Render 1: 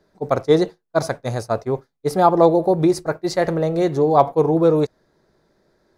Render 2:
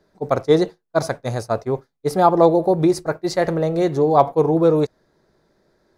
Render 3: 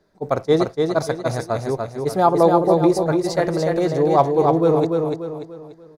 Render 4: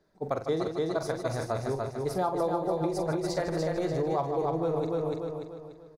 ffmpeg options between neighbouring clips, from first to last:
ffmpeg -i in.wav -af anull out.wav
ffmpeg -i in.wav -af "aecho=1:1:292|584|876|1168|1460:0.631|0.246|0.096|0.0374|0.0146,volume=-1.5dB" out.wav
ffmpeg -i in.wav -af "aecho=1:1:43.73|151.6:0.355|0.282,asubboost=boost=3.5:cutoff=99,acompressor=threshold=-19dB:ratio=5,volume=-6.5dB" out.wav

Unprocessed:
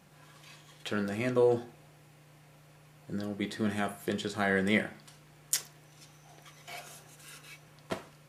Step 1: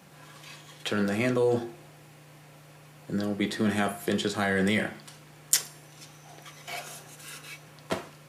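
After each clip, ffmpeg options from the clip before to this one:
ffmpeg -i in.wav -filter_complex "[0:a]bandreject=frequency=349.2:width_type=h:width=4,bandreject=frequency=698.4:width_type=h:width=4,bandreject=frequency=1047.6:width_type=h:width=4,bandreject=frequency=1396.8:width_type=h:width=4,bandreject=frequency=1746:width_type=h:width=4,bandreject=frequency=2095.2:width_type=h:width=4,bandreject=frequency=2444.4:width_type=h:width=4,bandreject=frequency=2793.6:width_type=h:width=4,bandreject=frequency=3142.8:width_type=h:width=4,bandreject=frequency=3492:width_type=h:width=4,bandreject=frequency=3841.2:width_type=h:width=4,bandreject=frequency=4190.4:width_type=h:width=4,bandreject=frequency=4539.6:width_type=h:width=4,bandreject=frequency=4888.8:width_type=h:width=4,bandreject=frequency=5238:width_type=h:width=4,bandreject=frequency=5587.2:width_type=h:width=4,bandreject=frequency=5936.4:width_type=h:width=4,bandreject=frequency=6285.6:width_type=h:width=4,bandreject=frequency=6634.8:width_type=h:width=4,bandreject=frequency=6984:width_type=h:width=4,bandreject=frequency=7333.2:width_type=h:width=4,bandreject=frequency=7682.4:width_type=h:width=4,bandreject=frequency=8031.6:width_type=h:width=4,bandreject=frequency=8380.8:width_type=h:width=4,bandreject=frequency=8730:width_type=h:width=4,bandreject=frequency=9079.2:width_type=h:width=4,bandreject=frequency=9428.4:width_type=h:width=4,bandreject=frequency=9777.6:width_type=h:width=4,bandreject=frequency=10126.8:width_type=h:width=4,bandreject=frequency=10476:width_type=h:width=4,bandreject=frequency=10825.2:width_type=h:width=4,bandreject=frequency=11174.4:width_type=h:width=4,bandreject=frequency=11523.6:width_type=h:width=4,bandreject=frequency=11872.8:width_type=h:width=4,bandreject=frequency=12222:width_type=h:width=4,bandreject=frequency=12571.2:width_type=h:width=4,bandreject=frequency=12920.4:width_type=h:width=4,bandreject=frequency=13269.6:width_type=h:width=4,acrossover=split=140|3400[link_01][link_02][link_03];[link_01]highpass=frequency=68:width=0.5412,highpass=frequency=68:width=1.3066[link_04];[link_02]alimiter=limit=-24dB:level=0:latency=1:release=19[link_05];[link_04][link_05][link_03]amix=inputs=3:normalize=0,volume=7dB" out.wav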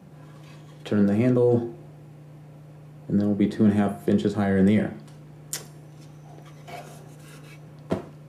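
ffmpeg -i in.wav -af "tiltshelf=frequency=770:gain=9.5" out.wav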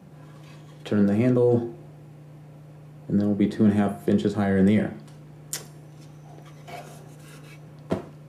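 ffmpeg -i in.wav -af anull out.wav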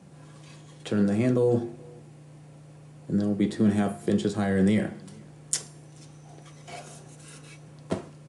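ffmpeg -i in.wav -filter_complex "[0:a]asplit=2[link_01][link_02];[link_02]adelay=431.5,volume=-27dB,highshelf=frequency=4000:gain=-9.71[link_03];[link_01][link_03]amix=inputs=2:normalize=0,crystalizer=i=2:c=0,aresample=22050,aresample=44100,volume=-3dB" out.wav

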